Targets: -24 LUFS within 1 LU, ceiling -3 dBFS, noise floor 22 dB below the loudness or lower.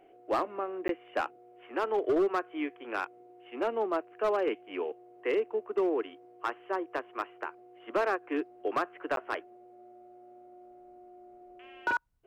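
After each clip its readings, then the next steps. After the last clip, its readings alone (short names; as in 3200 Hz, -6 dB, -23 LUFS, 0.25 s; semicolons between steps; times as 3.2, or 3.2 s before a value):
clipped 0.9%; flat tops at -22.0 dBFS; dropouts 2; longest dropout 12 ms; loudness -33.0 LUFS; peak -22.0 dBFS; loudness target -24.0 LUFS
-> clip repair -22 dBFS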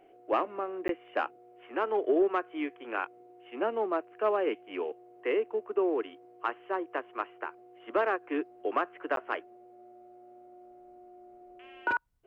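clipped 0.0%; dropouts 2; longest dropout 12 ms
-> interpolate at 0.88/9.16, 12 ms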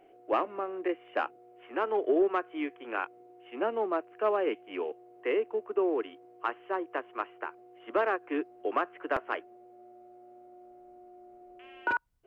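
dropouts 0; loudness -32.5 LUFS; peak -15.5 dBFS; loudness target -24.0 LUFS
-> gain +8.5 dB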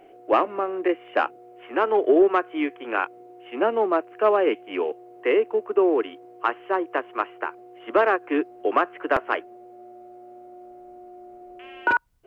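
loudness -24.0 LUFS; peak -7.0 dBFS; noise floor -48 dBFS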